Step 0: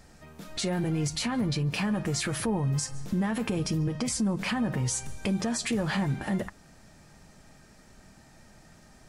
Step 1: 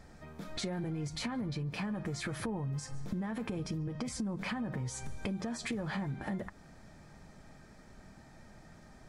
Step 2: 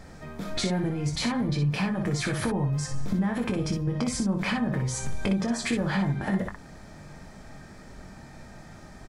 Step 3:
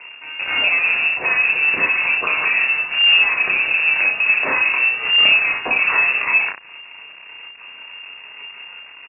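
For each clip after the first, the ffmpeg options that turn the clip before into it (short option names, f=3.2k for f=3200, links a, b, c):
-af "highshelf=f=4.5k:g=-10.5,bandreject=f=2.8k:w=10,acompressor=threshold=-34dB:ratio=6"
-af "aecho=1:1:21|61:0.422|0.473,volume=8dB"
-filter_complex "[0:a]acrusher=bits=6:dc=4:mix=0:aa=0.000001,asplit=2[a][b];[b]adelay=32,volume=-4dB[c];[a][c]amix=inputs=2:normalize=0,lowpass=f=2.4k:t=q:w=0.5098,lowpass=f=2.4k:t=q:w=0.6013,lowpass=f=2.4k:t=q:w=0.9,lowpass=f=2.4k:t=q:w=2.563,afreqshift=-2800,volume=8dB"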